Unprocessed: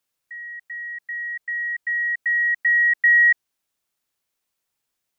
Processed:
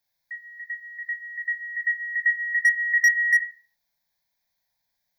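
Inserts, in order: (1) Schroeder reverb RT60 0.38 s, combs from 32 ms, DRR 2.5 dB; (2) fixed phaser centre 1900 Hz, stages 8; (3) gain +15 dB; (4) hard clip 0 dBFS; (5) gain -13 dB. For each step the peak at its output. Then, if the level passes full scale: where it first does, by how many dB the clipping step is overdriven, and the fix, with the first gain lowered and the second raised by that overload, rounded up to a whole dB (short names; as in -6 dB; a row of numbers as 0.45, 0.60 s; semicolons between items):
-10.0, -10.0, +5.0, 0.0, -13.0 dBFS; step 3, 5.0 dB; step 3 +10 dB, step 5 -8 dB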